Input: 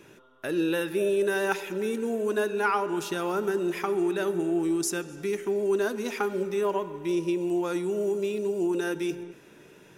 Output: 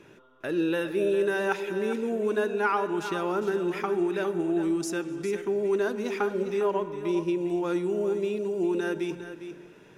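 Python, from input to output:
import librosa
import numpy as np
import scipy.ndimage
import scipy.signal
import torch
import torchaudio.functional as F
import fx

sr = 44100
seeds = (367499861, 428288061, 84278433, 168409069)

p1 = fx.high_shelf(x, sr, hz=6400.0, db=-12.0)
y = p1 + fx.echo_single(p1, sr, ms=405, db=-10.5, dry=0)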